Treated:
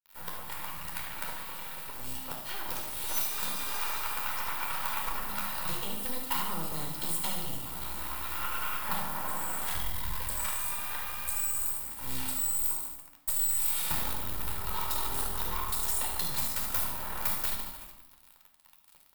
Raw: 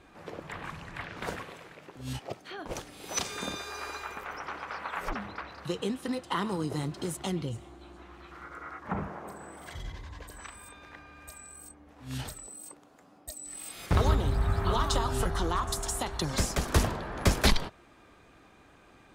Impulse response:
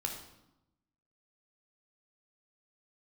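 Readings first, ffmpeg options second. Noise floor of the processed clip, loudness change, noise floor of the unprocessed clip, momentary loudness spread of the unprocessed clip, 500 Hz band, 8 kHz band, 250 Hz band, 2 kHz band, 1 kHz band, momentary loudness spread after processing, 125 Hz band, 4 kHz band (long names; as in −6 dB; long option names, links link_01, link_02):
−58 dBFS, +1.0 dB, −58 dBFS, 20 LU, −10.5 dB, +4.0 dB, −10.0 dB, −1.0 dB, −1.5 dB, 9 LU, −12.0 dB, −1.5 dB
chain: -filter_complex "[0:a]agate=range=-10dB:threshold=-54dB:ratio=16:detection=peak,lowpass=10000,asplit=2[link_01][link_02];[link_02]aeval=exprs='(mod(7.94*val(0)+1,2)-1)/7.94':channel_layout=same,volume=-4dB[link_03];[link_01][link_03]amix=inputs=2:normalize=0,acompressor=threshold=-38dB:ratio=10,aecho=1:1:73|146|219|292|365|438|511:0.316|0.183|0.106|0.0617|0.0358|0.0208|0.012,acrusher=bits=6:dc=4:mix=0:aa=0.000001,aemphasis=mode=production:type=75fm,dynaudnorm=framelen=300:gausssize=17:maxgain=7dB[link_04];[1:a]atrim=start_sample=2205[link_05];[link_04][link_05]afir=irnorm=-1:irlink=0,asoftclip=type=hard:threshold=-21dB,equalizer=frequency=100:width_type=o:width=0.67:gain=-8,equalizer=frequency=400:width_type=o:width=0.67:gain=-10,equalizer=frequency=1000:width_type=o:width=0.67:gain=5,equalizer=frequency=6300:width_type=o:width=0.67:gain=-8"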